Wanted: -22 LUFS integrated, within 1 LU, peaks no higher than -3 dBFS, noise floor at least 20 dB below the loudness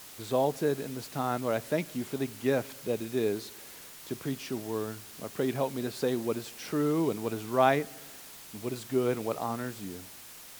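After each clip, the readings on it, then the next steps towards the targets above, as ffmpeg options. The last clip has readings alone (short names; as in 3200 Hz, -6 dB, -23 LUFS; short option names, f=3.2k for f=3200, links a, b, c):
noise floor -48 dBFS; noise floor target -52 dBFS; loudness -31.5 LUFS; peak -9.5 dBFS; loudness target -22.0 LUFS
-> -af "afftdn=nr=6:nf=-48"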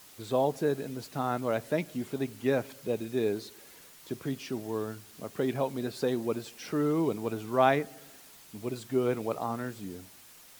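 noise floor -54 dBFS; loudness -31.5 LUFS; peak -9.5 dBFS; loudness target -22.0 LUFS
-> -af "volume=9.5dB,alimiter=limit=-3dB:level=0:latency=1"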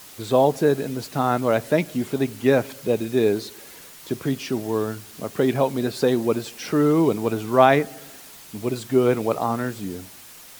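loudness -22.5 LUFS; peak -3.0 dBFS; noise floor -44 dBFS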